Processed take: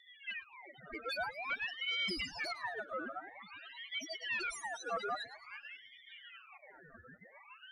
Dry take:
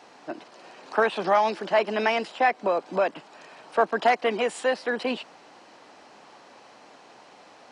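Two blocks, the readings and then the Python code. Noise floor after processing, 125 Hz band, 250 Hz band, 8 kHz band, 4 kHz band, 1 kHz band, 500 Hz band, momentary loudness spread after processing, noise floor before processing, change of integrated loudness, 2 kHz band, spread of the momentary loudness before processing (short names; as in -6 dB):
-61 dBFS, n/a, -17.5 dB, -6.0 dB, -3.5 dB, -18.0 dB, -21.5 dB, 20 LU, -52 dBFS, -14.5 dB, -9.0 dB, 14 LU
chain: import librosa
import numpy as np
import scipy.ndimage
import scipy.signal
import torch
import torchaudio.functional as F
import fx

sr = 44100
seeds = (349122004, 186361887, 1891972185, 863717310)

p1 = fx.spec_repair(x, sr, seeds[0], start_s=2.0, length_s=0.51, low_hz=490.0, high_hz=2200.0, source='after')
p2 = fx.high_shelf(p1, sr, hz=4900.0, db=4.5)
p3 = p2 + 0.75 * np.pad(p2, (int(7.4 * sr / 1000.0), 0))[:len(p2)]
p4 = fx.dynamic_eq(p3, sr, hz=3400.0, q=0.9, threshold_db=-33.0, ratio=4.0, max_db=4)
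p5 = fx.over_compress(p4, sr, threshold_db=-26.0, ratio=-0.5)
p6 = fx.spec_topn(p5, sr, count=1)
p7 = 10.0 ** (-36.0 / 20.0) * np.tanh(p6 / 10.0 ** (-36.0 / 20.0))
p8 = fx.rotary(p7, sr, hz=7.0)
p9 = p8 + fx.echo_split(p8, sr, split_hz=1000.0, low_ms=604, high_ms=109, feedback_pct=52, wet_db=-14, dry=0)
p10 = fx.ring_lfo(p9, sr, carrier_hz=1800.0, swing_pct=50, hz=0.5)
y = p10 * 10.0 ** (6.5 / 20.0)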